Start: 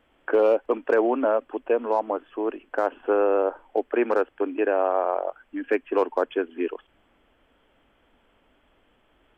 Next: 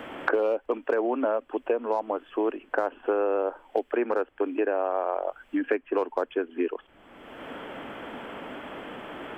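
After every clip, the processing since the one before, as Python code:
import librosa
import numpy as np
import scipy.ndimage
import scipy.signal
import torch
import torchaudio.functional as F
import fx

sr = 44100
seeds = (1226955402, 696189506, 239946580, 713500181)

y = fx.band_squash(x, sr, depth_pct=100)
y = y * librosa.db_to_amplitude(-4.0)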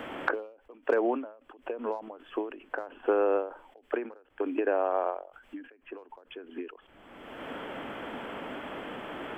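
y = fx.end_taper(x, sr, db_per_s=120.0)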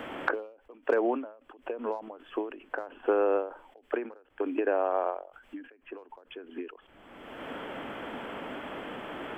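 y = x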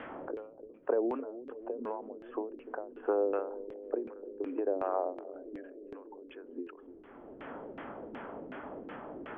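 y = fx.echo_bbd(x, sr, ms=296, stages=1024, feedback_pct=84, wet_db=-13.0)
y = fx.filter_lfo_lowpass(y, sr, shape='saw_down', hz=2.7, low_hz=300.0, high_hz=2400.0, q=1.3)
y = y * librosa.db_to_amplitude(-5.5)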